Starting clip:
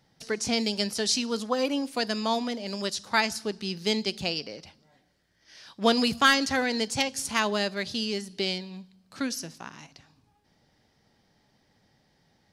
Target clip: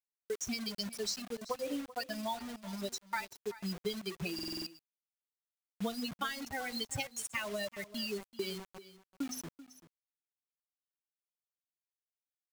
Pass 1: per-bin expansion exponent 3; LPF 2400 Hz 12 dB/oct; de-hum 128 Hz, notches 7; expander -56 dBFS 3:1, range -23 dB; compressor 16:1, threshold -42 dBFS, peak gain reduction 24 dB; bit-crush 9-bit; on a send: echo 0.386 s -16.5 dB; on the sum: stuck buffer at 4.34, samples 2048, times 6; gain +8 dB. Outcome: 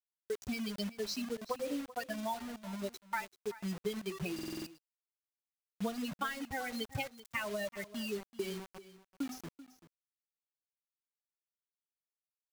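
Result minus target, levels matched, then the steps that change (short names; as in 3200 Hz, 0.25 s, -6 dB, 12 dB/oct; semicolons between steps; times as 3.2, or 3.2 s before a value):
8000 Hz band -6.0 dB
change: LPF 8500 Hz 12 dB/oct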